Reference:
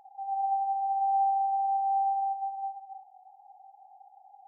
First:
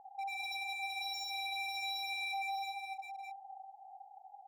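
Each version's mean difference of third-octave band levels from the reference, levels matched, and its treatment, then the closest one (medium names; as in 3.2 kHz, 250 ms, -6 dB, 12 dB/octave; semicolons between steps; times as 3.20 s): 7.5 dB: Chebyshev low-pass 820 Hz, order 2; wavefolder -35.5 dBFS; delay 609 ms -7 dB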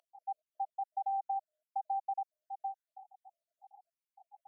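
1.5 dB: random holes in the spectrogram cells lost 69%; high-pass 770 Hz; compression, threshold -33 dBFS, peak gain reduction 6.5 dB; trim +1 dB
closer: second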